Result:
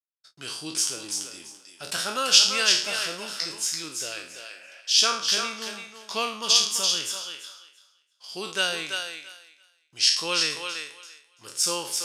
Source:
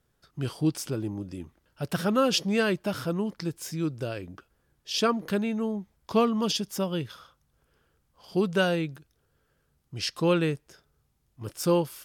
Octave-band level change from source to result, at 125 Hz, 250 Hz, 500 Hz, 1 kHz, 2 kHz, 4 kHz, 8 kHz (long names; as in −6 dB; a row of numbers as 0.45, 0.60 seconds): below −15 dB, −14.5 dB, −8.0 dB, +0.5 dB, +5.5 dB, +12.5 dB, +15.0 dB